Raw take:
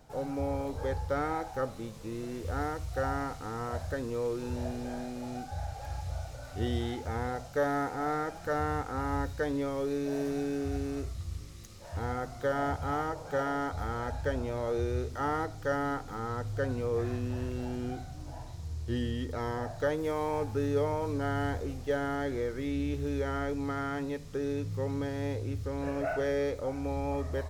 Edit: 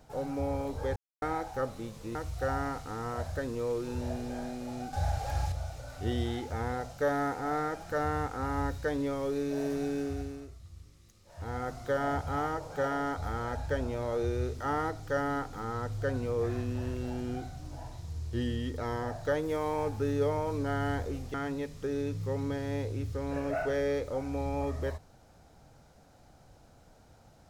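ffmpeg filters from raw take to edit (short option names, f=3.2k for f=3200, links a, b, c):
-filter_complex "[0:a]asplit=9[a][b][c][d][e][f][g][h][i];[a]atrim=end=0.96,asetpts=PTS-STARTPTS,afade=t=out:st=0.956:d=0.004:c=hsin[j];[b]atrim=start=0.96:end=1.22,asetpts=PTS-STARTPTS,volume=0[k];[c]atrim=start=1.22:end=2.152,asetpts=PTS-STARTPTS,afade=t=in:d=0.004:c=hsin[l];[d]atrim=start=2.698:end=5.482[m];[e]atrim=start=5.478:end=6.072,asetpts=PTS-STARTPTS,volume=6.5dB[n];[f]atrim=start=6.068:end=11.01,asetpts=PTS-STARTPTS,afade=t=out:st=4.482:d=0.46:silence=0.266073[o];[g]atrim=start=11.01:end=11.78,asetpts=PTS-STARTPTS,volume=-11.5dB[p];[h]atrim=start=11.78:end=21.892,asetpts=PTS-STARTPTS,afade=t=in:d=0.46:silence=0.266073[q];[i]atrim=start=23.848[r];[j][k][l]concat=n=3:v=0:a=1[s];[s][m]acrossfade=d=0.004:c1=hsin:c2=hsin[t];[t][n]acrossfade=d=0.004:c1=hsin:c2=hsin[u];[o][p][q]concat=n=3:v=0:a=1[v];[u][v]acrossfade=d=0.004:c1=hsin:c2=hsin[w];[w][r]acrossfade=d=0.004:c1=hsin:c2=hsin"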